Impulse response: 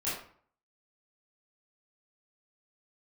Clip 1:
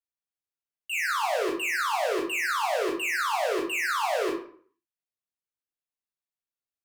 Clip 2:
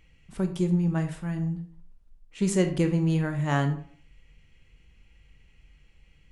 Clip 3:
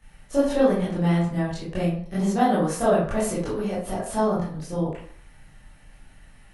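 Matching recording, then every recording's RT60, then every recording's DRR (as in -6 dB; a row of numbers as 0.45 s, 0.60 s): 3; 0.55 s, 0.55 s, 0.55 s; -2.5 dB, 6.0 dB, -11.0 dB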